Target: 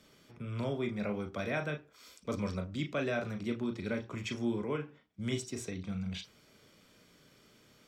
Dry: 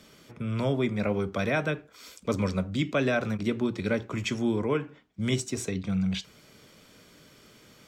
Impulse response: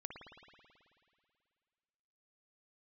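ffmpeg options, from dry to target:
-filter_complex "[1:a]atrim=start_sample=2205,atrim=end_sample=4410,asetrate=70560,aresample=44100[link_01];[0:a][link_01]afir=irnorm=-1:irlink=0,volume=1.5dB"

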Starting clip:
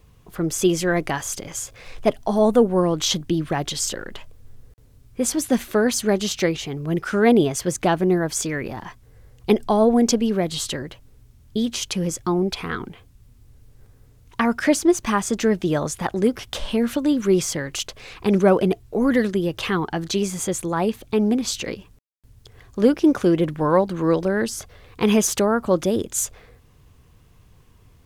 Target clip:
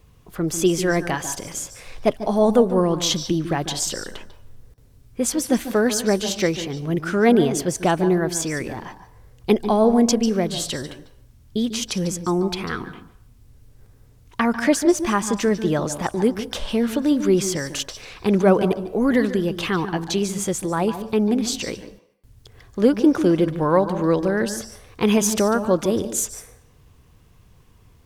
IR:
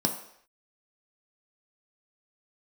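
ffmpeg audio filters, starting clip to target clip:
-filter_complex "[0:a]asplit=2[link_01][link_02];[1:a]atrim=start_sample=2205,lowshelf=frequency=330:gain=-11.5,adelay=145[link_03];[link_02][link_03]afir=irnorm=-1:irlink=0,volume=-19dB[link_04];[link_01][link_04]amix=inputs=2:normalize=0"

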